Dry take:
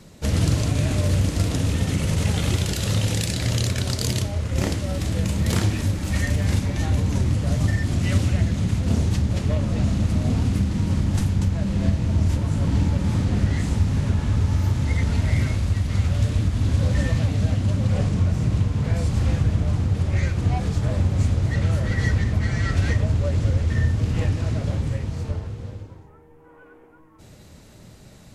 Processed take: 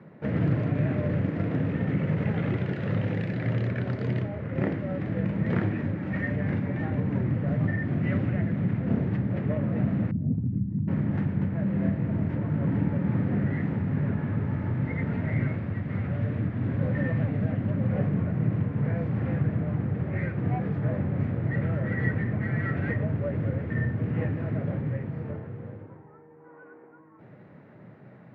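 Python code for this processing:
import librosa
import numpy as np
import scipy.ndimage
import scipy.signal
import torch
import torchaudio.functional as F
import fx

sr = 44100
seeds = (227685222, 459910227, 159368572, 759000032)

y = fx.envelope_sharpen(x, sr, power=2.0, at=(10.11, 10.88))
y = scipy.signal.sosfilt(scipy.signal.cheby1(3, 1.0, [130.0, 1900.0], 'bandpass', fs=sr, output='sos'), y)
y = fx.dynamic_eq(y, sr, hz=990.0, q=1.2, threshold_db=-50.0, ratio=4.0, max_db=-5)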